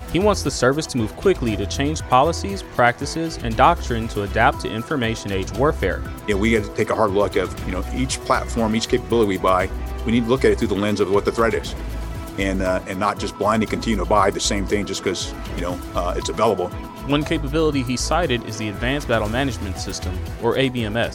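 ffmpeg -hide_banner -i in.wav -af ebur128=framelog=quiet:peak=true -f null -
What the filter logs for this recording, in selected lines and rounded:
Integrated loudness:
  I:         -20.9 LUFS
  Threshold: -30.9 LUFS
Loudness range:
  LRA:         2.5 LU
  Threshold: -40.9 LUFS
  LRA low:   -22.2 LUFS
  LRA high:  -19.6 LUFS
True peak:
  Peak:       -1.3 dBFS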